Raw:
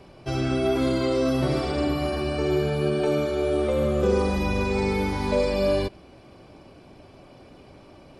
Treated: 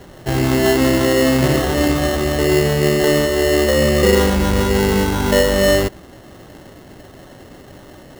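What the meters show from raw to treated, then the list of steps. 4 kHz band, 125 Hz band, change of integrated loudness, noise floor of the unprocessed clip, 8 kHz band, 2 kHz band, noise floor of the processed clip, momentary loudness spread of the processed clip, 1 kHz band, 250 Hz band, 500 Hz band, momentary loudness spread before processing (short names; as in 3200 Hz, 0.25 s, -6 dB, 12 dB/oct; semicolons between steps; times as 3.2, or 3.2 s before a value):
+13.0 dB, +8.5 dB, +9.0 dB, -50 dBFS, +19.0 dB, +13.0 dB, -41 dBFS, 4 LU, +8.0 dB, +8.5 dB, +8.0 dB, 4 LU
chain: sample-rate reducer 2400 Hz, jitter 0%; gain +8.5 dB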